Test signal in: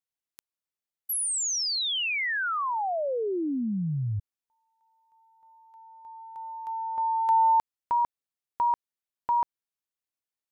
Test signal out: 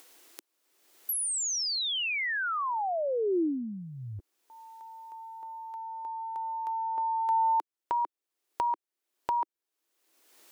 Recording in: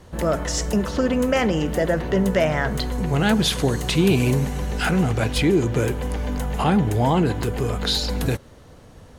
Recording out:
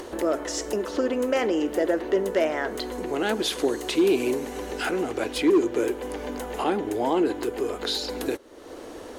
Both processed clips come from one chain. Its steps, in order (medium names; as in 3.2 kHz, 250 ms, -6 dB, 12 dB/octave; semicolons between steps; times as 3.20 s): resonant low shelf 220 Hz -14 dB, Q 3; upward compressor, threshold -21 dBFS; hard clipper -8.5 dBFS; trim -5.5 dB